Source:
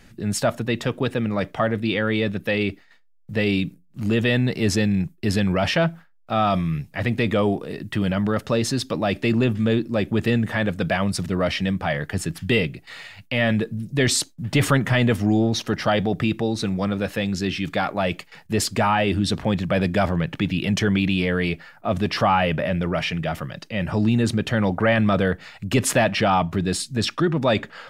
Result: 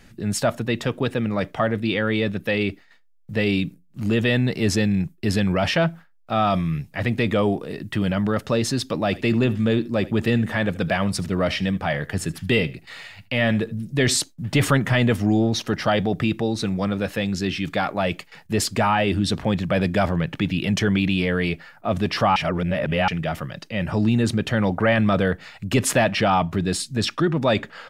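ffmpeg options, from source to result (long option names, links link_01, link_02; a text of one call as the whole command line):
ffmpeg -i in.wav -filter_complex "[0:a]asplit=3[link_01][link_02][link_03];[link_01]afade=type=out:start_time=9.11:duration=0.02[link_04];[link_02]aecho=1:1:77:0.106,afade=type=in:start_time=9.11:duration=0.02,afade=type=out:start_time=14.19:duration=0.02[link_05];[link_03]afade=type=in:start_time=14.19:duration=0.02[link_06];[link_04][link_05][link_06]amix=inputs=3:normalize=0,asplit=3[link_07][link_08][link_09];[link_07]atrim=end=22.362[link_10];[link_08]atrim=start=22.358:end=23.082,asetpts=PTS-STARTPTS,areverse[link_11];[link_09]atrim=start=23.078[link_12];[link_10][link_11]acrossfade=duration=0.004:curve1=hsin:curve2=hsin[link_13];[link_13][link_12]acrossfade=duration=0.004:curve1=hsin:curve2=hsin" out.wav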